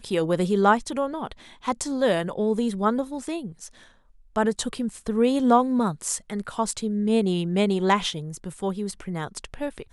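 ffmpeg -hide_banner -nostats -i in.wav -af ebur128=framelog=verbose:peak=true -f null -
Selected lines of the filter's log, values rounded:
Integrated loudness:
  I:         -24.9 LUFS
  Threshold: -35.3 LUFS
Loudness range:
  LRA:         3.7 LU
  Threshold: -45.2 LUFS
  LRA low:   -27.2 LUFS
  LRA high:  -23.5 LUFS
True peak:
  Peak:       -6.2 dBFS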